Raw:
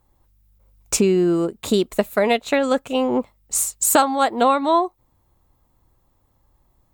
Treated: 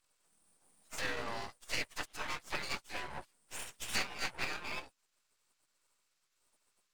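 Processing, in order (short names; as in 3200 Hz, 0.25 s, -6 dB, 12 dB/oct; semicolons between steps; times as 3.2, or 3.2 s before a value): inharmonic rescaling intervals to 84%; spectral gate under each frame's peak -25 dB weak; half-wave rectifier; gain +4.5 dB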